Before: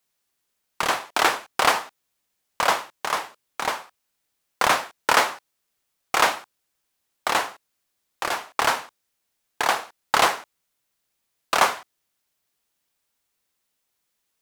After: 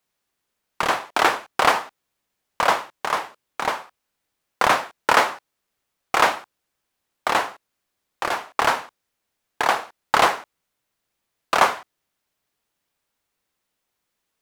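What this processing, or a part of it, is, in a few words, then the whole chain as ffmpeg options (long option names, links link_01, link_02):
behind a face mask: -af "highshelf=frequency=3300:gain=-7.5,volume=3dB"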